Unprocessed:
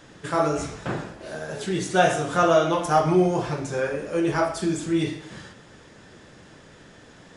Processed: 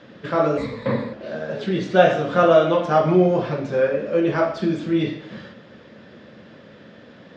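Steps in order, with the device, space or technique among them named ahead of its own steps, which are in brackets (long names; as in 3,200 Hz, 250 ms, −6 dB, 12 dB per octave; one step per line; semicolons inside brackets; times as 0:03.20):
0:00.57–0:01.13: EQ curve with evenly spaced ripples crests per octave 0.98, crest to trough 15 dB
guitar cabinet (loudspeaker in its box 93–4,300 Hz, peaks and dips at 220 Hz +9 dB, 550 Hz +8 dB, 850 Hz −4 dB)
level +1.5 dB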